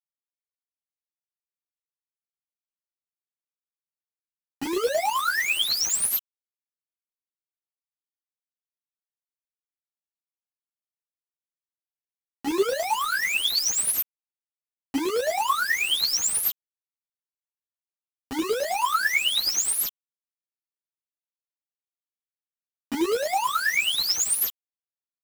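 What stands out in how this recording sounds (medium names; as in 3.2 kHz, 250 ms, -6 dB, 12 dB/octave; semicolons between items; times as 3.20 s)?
chopped level 9.3 Hz, depth 65%, duty 30%; a quantiser's noise floor 6-bit, dither none; a shimmering, thickened sound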